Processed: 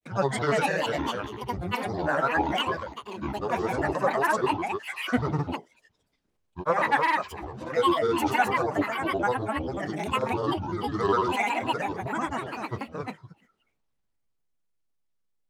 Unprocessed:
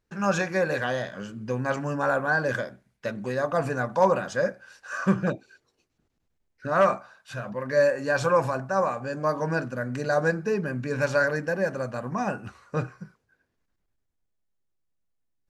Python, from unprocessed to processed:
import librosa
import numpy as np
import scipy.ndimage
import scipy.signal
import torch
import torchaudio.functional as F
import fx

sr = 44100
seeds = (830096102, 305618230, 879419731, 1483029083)

p1 = x + fx.echo_multitap(x, sr, ms=(71, 213, 263), db=(-15.0, -19.5, -4.0), dry=0)
p2 = fx.granulator(p1, sr, seeds[0], grain_ms=100.0, per_s=20.0, spray_ms=100.0, spread_st=12)
y = fx.low_shelf(p2, sr, hz=260.0, db=-4.5)